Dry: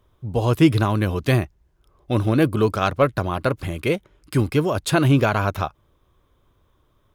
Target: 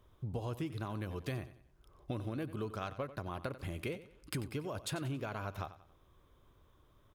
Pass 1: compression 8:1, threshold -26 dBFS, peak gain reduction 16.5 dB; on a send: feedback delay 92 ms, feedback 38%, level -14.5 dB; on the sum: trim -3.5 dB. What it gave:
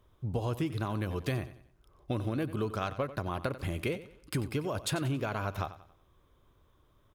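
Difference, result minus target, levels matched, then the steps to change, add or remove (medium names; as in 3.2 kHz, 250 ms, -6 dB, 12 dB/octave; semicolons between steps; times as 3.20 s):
compression: peak gain reduction -6.5 dB
change: compression 8:1, threshold -33.5 dBFS, peak gain reduction 23 dB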